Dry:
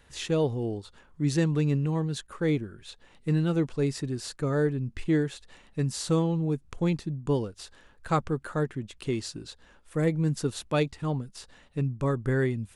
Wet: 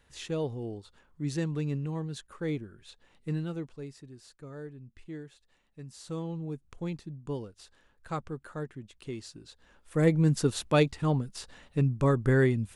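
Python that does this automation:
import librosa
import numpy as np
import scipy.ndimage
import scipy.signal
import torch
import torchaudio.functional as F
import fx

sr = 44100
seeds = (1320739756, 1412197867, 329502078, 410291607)

y = fx.gain(x, sr, db=fx.line((3.32, -6.5), (3.97, -17.0), (5.87, -17.0), (6.3, -9.0), (9.43, -9.0), (10.08, 2.5)))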